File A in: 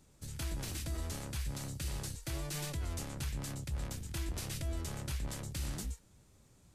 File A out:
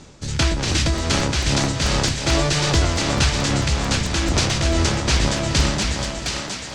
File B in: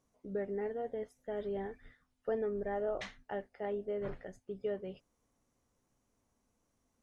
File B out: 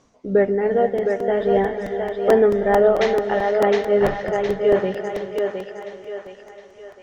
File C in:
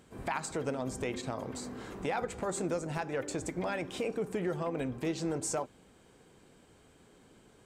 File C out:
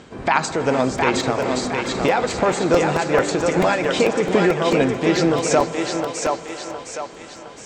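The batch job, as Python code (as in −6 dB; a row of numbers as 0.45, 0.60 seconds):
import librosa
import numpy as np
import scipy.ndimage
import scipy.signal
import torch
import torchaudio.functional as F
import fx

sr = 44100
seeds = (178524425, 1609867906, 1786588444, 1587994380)

p1 = scipy.signal.sosfilt(scipy.signal.butter(4, 6500.0, 'lowpass', fs=sr, output='sos'), x)
p2 = fx.low_shelf(p1, sr, hz=140.0, db=-7.0)
p3 = p2 * (1.0 - 0.44 / 2.0 + 0.44 / 2.0 * np.cos(2.0 * np.pi * 2.5 * (np.arange(len(p2)) / sr)))
p4 = p3 + fx.echo_thinned(p3, sr, ms=713, feedback_pct=48, hz=410.0, wet_db=-3, dry=0)
p5 = fx.rev_gated(p4, sr, seeds[0], gate_ms=490, shape='rising', drr_db=10.0)
p6 = fx.buffer_crackle(p5, sr, first_s=0.98, period_s=0.22, block=128, kind='repeat')
y = p6 * 10.0 ** (-20 / 20.0) / np.sqrt(np.mean(np.square(p6)))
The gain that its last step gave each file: +25.0, +21.5, +18.0 decibels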